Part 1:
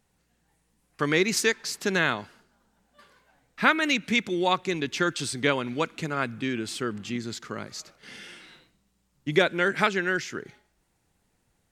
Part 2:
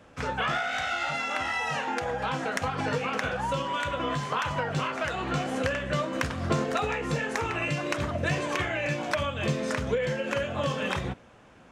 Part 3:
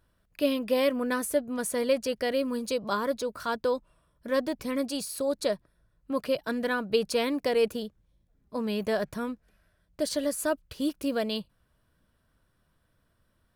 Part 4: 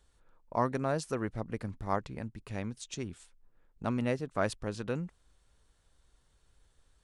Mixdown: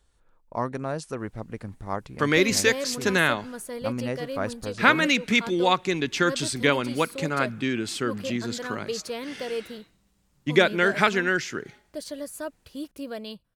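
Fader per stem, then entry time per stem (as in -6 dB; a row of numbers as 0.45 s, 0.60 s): +2.5 dB, mute, -6.5 dB, +1.0 dB; 1.20 s, mute, 1.95 s, 0.00 s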